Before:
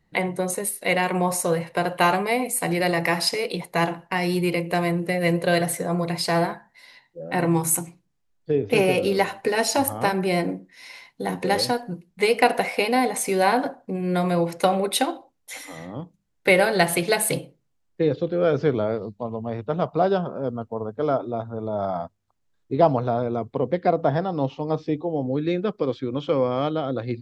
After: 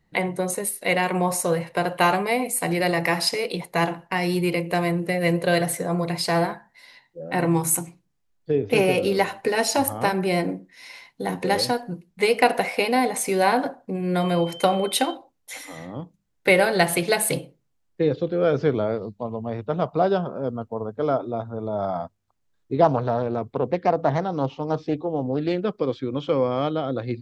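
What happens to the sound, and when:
0:14.19–0:15.13: steady tone 3,100 Hz −38 dBFS
0:22.84–0:25.65: highs frequency-modulated by the lows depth 0.23 ms

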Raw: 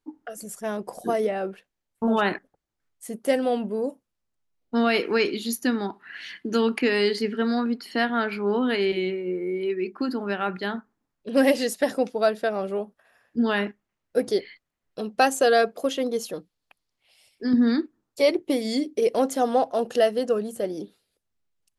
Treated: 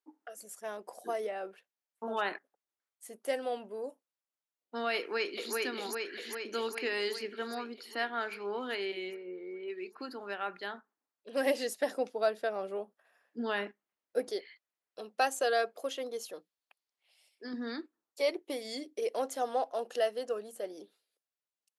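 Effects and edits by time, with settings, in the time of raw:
0:04.97–0:05.54: delay throw 400 ms, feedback 70%, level −1.5 dB
0:09.16–0:09.68: high-frequency loss of the air 300 metres
0:11.46–0:14.31: low-shelf EQ 350 Hz +8 dB
whole clip: high-pass filter 460 Hz 12 dB per octave; level −8.5 dB

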